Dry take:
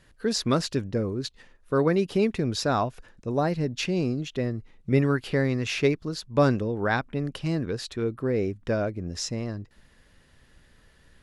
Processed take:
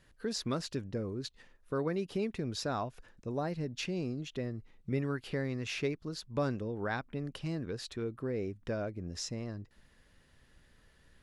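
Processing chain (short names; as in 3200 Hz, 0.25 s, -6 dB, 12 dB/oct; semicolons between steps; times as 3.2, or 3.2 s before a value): compressor 1.5:1, threshold -32 dBFS, peak gain reduction 6.5 dB; gain -6 dB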